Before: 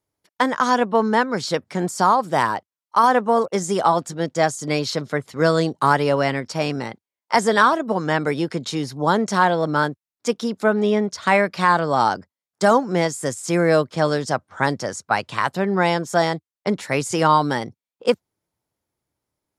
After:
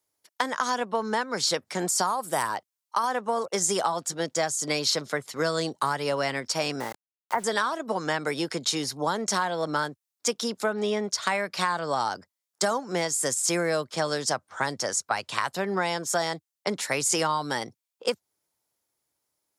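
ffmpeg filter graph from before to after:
-filter_complex "[0:a]asettb=1/sr,asplit=3[s0][s1][s2];[s0]atrim=end=2.074[s3];[s1]atrim=start=2.07:end=2.48,asetpts=PTS-STARTPTS,afade=t=in:d=0.004:c=qsin,afade=t=out:st=0.406:d=0.004:c=qsin,highshelf=f=7500:t=q:w=1.5:g=9,asoftclip=type=hard:threshold=0.501[s4];[s2]atrim=start=2.476[s5];[s3][s4]acrossfade=d=0.004:c1=hsin:c2=qsin[s6];[s6][s5]acrossfade=d=0.004:c1=qsin:c2=hsin,asettb=1/sr,asplit=3[s7][s8][s9];[s7]atrim=end=6.804[s10];[s8]atrim=start=6.8:end=7.44,asetpts=PTS-STARTPTS,afade=t=in:d=0.004:c=qsin,afade=t=out:st=0.636:d=0.004:c=qsin,lowpass=f=1800:w=0.5412,lowpass=f=1800:w=1.3066,aeval=exprs='val(0)*gte(abs(val(0)),0.015)':c=same[s11];[s9]atrim=start=7.436[s12];[s10][s11]acrossfade=d=0.004:c1=hsin:c2=qsin[s13];[s13][s12]acrossfade=d=0.004:c1=qsin:c2=hsin,lowshelf=f=320:g=-10,acrossover=split=150[s14][s15];[s15]acompressor=threshold=0.0708:ratio=6[s16];[s14][s16]amix=inputs=2:normalize=0,bass=f=250:g=-2,treble=f=4000:g=7"

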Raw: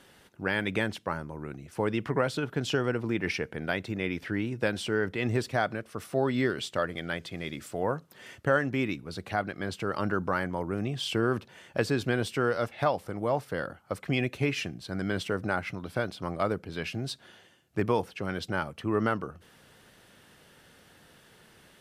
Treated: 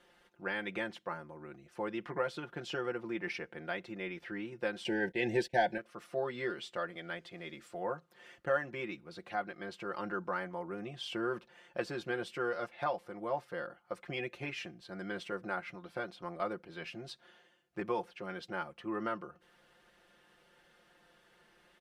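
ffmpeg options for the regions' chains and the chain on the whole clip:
-filter_complex "[0:a]asettb=1/sr,asplit=3[s0][s1][s2];[s0]atrim=end=4.844[s3];[s1]atrim=start=4.84:end=5.78,asetpts=PTS-STARTPTS,afade=t=in:d=0.004:c=qsin,afade=t=out:st=0.936:d=0.004:c=qsin,agate=range=0.0708:threshold=0.00891:ratio=16:release=100:detection=peak,acontrast=75,asuperstop=centerf=1200:order=20:qfactor=2.3[s4];[s2]atrim=start=5.776[s5];[s3][s4]acrossfade=d=0.004:c1=hsin:c2=qsin[s6];[s6][s5]acrossfade=d=0.004:c1=qsin:c2=hsin,lowpass=f=2900:p=1,equalizer=f=120:t=o:w=2:g=-11.5,aecho=1:1:5.7:0.77,volume=0.422"

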